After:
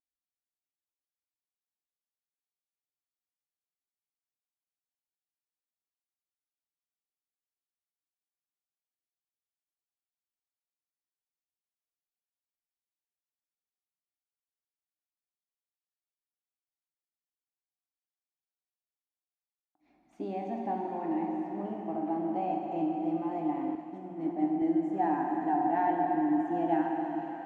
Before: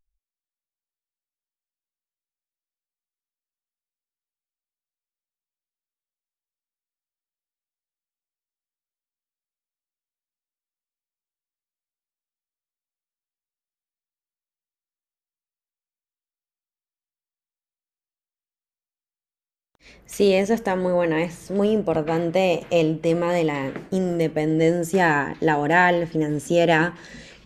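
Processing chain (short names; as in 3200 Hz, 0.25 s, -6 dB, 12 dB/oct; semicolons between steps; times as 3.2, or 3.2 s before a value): double band-pass 480 Hz, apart 1.3 oct; plate-style reverb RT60 4.9 s, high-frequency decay 0.95×, DRR -1 dB; 23.75–24.62 three-band expander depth 100%; gain -4.5 dB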